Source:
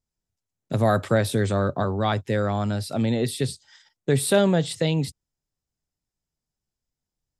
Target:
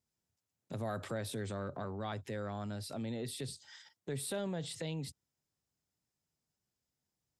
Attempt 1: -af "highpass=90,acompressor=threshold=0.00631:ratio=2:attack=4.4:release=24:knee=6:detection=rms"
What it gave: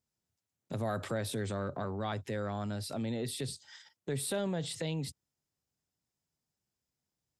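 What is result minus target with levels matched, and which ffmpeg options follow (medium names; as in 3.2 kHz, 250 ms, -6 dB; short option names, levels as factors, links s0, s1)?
compression: peak gain reduction -4 dB
-af "highpass=90,acompressor=threshold=0.00251:ratio=2:attack=4.4:release=24:knee=6:detection=rms"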